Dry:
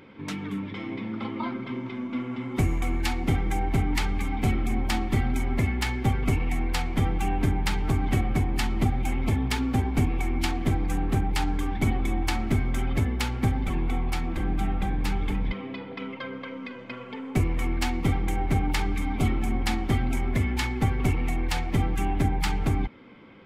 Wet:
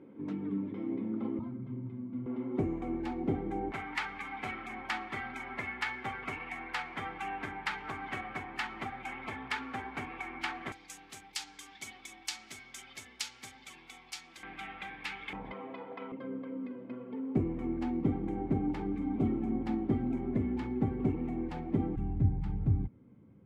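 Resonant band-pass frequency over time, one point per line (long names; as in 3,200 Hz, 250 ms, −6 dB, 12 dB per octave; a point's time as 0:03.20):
resonant band-pass, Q 1.3
310 Hz
from 0:01.39 110 Hz
from 0:02.26 380 Hz
from 0:03.72 1,500 Hz
from 0:10.72 5,900 Hz
from 0:14.43 2,300 Hz
from 0:15.33 770 Hz
from 0:16.12 290 Hz
from 0:21.96 110 Hz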